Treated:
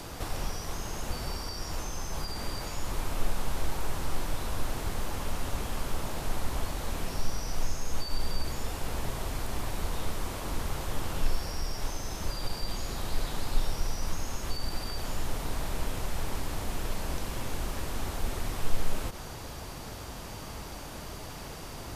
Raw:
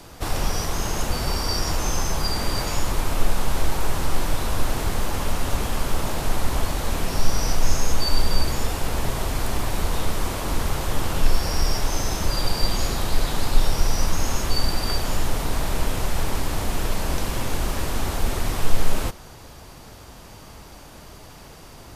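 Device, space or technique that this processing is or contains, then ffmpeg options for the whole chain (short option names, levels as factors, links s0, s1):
de-esser from a sidechain: -filter_complex "[0:a]asplit=2[s0][s1];[s1]highpass=6100,apad=whole_len=968069[s2];[s0][s2]sidechaincompress=threshold=0.002:ratio=4:attack=16:release=47,volume=1.5"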